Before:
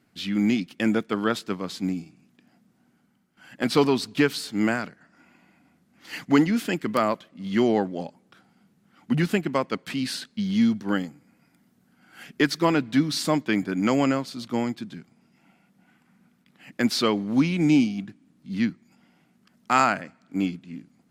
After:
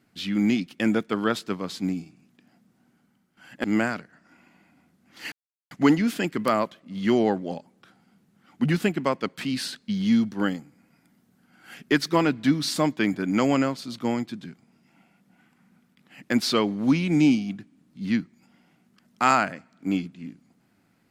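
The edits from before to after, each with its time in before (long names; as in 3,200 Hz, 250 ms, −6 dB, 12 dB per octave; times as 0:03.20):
0:03.64–0:04.52: remove
0:06.20: splice in silence 0.39 s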